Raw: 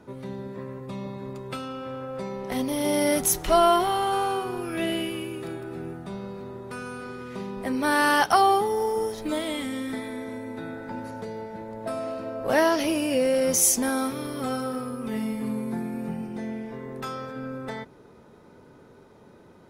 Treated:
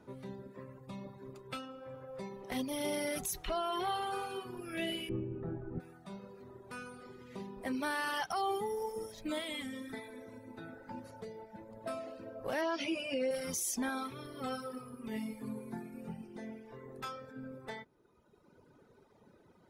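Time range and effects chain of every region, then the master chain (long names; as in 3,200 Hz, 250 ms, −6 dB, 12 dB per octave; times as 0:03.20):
0:05.09–0:05.80: low-pass filter 2,300 Hz + spectral tilt −4 dB per octave
0:12.61–0:13.31: high-pass filter 170 Hz 6 dB per octave + high-frequency loss of the air 75 metres + double-tracking delay 15 ms −3.5 dB
whole clip: reverb reduction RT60 1.7 s; dynamic equaliser 2,700 Hz, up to +4 dB, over −44 dBFS, Q 0.89; brickwall limiter −18.5 dBFS; level −8 dB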